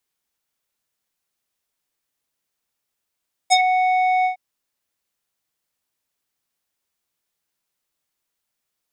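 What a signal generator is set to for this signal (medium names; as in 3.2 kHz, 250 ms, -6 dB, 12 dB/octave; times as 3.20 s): synth note square F#5 12 dB/octave, low-pass 1.7 kHz, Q 3.5, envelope 2.5 oct, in 0.12 s, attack 26 ms, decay 0.05 s, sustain -7 dB, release 0.11 s, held 0.75 s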